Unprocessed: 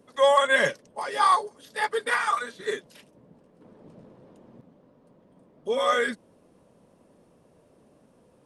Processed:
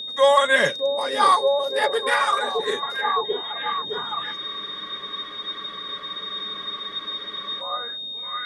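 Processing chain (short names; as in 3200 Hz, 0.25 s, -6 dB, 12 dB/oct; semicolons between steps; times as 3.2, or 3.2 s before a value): delay with a stepping band-pass 0.614 s, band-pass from 350 Hz, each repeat 0.7 oct, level -0.5 dB; whine 3700 Hz -33 dBFS; spectral freeze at 4.39, 3.22 s; gain +3 dB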